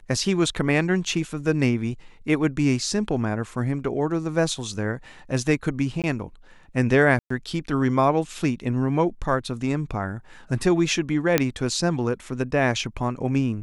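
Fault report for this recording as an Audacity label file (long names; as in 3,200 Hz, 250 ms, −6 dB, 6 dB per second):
6.020000	6.040000	drop-out 17 ms
7.190000	7.300000	drop-out 114 ms
11.380000	11.380000	click −3 dBFS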